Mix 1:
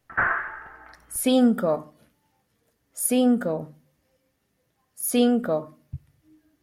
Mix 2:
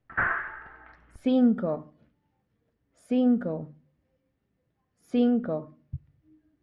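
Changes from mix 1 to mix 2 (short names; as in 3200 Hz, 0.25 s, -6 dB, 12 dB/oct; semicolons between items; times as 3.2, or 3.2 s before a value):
speech: add tape spacing loss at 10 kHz 36 dB; master: add bell 830 Hz -5 dB 2.3 oct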